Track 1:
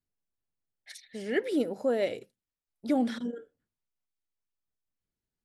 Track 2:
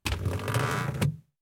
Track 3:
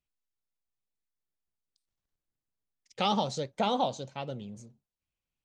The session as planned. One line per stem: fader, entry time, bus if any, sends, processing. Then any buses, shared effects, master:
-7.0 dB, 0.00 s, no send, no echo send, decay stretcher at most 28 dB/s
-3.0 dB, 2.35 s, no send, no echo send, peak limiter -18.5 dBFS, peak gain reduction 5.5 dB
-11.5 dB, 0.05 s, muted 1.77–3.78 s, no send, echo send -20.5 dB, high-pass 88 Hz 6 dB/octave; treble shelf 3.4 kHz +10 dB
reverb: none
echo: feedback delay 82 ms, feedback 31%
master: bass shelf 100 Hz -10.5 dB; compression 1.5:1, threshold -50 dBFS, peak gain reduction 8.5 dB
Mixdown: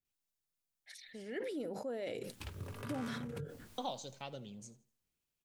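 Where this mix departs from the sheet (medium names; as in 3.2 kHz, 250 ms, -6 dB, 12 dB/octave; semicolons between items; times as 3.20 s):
stem 2 -3.0 dB -> -10.0 dB; stem 3 -11.5 dB -> -4.0 dB; master: missing bass shelf 100 Hz -10.5 dB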